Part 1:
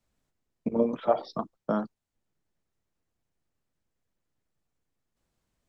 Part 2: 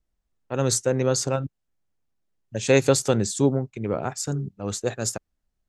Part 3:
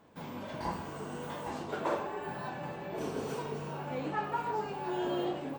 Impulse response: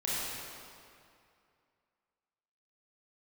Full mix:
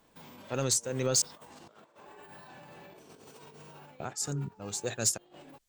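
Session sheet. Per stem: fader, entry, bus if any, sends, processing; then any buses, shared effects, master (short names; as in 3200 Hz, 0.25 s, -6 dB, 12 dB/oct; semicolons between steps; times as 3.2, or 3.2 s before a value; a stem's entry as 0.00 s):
-12.5 dB, 0.00 s, bus A, no send, tilt shelf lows -4 dB; compressor 10:1, threshold -28 dBFS, peak gain reduction 10.5 dB; Bessel high-pass 320 Hz
-5.0 dB, 0.00 s, muted 1.22–4, no bus, no send, limiter -13 dBFS, peak gain reduction 8 dB; tremolo 1.8 Hz, depth 64%
-10.5 dB, 0.00 s, bus A, no send, dry
bus A: 0.0 dB, negative-ratio compressor -51 dBFS, ratio -0.5; limiter -44 dBFS, peak gain reduction 10 dB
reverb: off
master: high shelf 2500 Hz +11.5 dB; soft clip -18 dBFS, distortion -15 dB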